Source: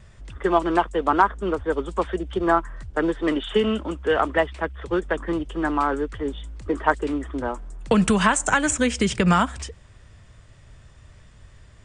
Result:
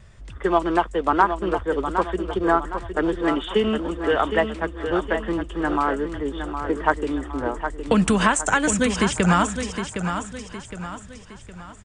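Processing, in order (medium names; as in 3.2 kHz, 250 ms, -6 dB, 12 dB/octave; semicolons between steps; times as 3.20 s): feedback delay 763 ms, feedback 43%, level -8 dB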